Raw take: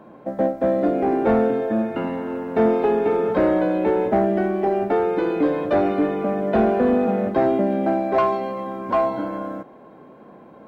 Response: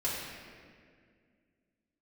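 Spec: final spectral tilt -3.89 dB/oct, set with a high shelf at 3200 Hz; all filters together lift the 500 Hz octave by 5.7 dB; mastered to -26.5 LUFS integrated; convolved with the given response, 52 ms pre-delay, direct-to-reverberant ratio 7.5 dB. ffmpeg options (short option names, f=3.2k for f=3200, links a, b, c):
-filter_complex "[0:a]equalizer=f=500:t=o:g=7,highshelf=f=3.2k:g=5.5,asplit=2[a][b];[1:a]atrim=start_sample=2205,adelay=52[c];[b][c]afir=irnorm=-1:irlink=0,volume=-14dB[d];[a][d]amix=inputs=2:normalize=0,volume=-11dB"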